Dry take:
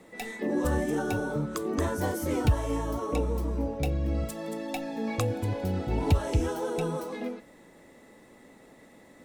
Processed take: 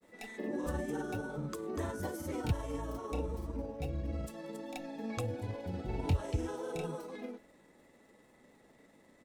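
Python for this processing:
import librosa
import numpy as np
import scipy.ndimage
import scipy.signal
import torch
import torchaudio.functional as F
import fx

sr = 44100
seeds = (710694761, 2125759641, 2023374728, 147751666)

y = fx.dmg_crackle(x, sr, seeds[0], per_s=140.0, level_db=-52.0)
y = fx.granulator(y, sr, seeds[1], grain_ms=100.0, per_s=20.0, spray_ms=30.0, spread_st=0)
y = y * 10.0 ** (-7.5 / 20.0)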